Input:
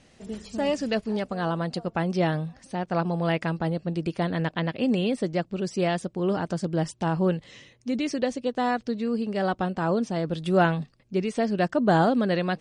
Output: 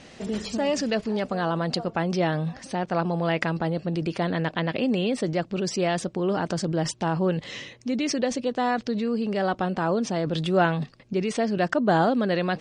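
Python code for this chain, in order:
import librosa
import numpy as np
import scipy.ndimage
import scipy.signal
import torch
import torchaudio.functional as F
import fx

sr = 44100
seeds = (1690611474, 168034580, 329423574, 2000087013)

p1 = scipy.signal.sosfilt(scipy.signal.butter(2, 6900.0, 'lowpass', fs=sr, output='sos'), x)
p2 = fx.low_shelf(p1, sr, hz=110.0, db=-9.5)
p3 = fx.over_compress(p2, sr, threshold_db=-37.0, ratio=-1.0)
y = p2 + F.gain(torch.from_numpy(p3), -0.5).numpy()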